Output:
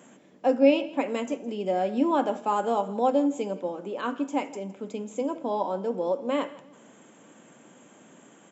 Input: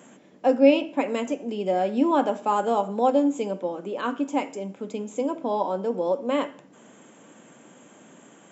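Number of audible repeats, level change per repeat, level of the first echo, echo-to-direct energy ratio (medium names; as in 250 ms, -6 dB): 2, -10.0 dB, -19.5 dB, -19.0 dB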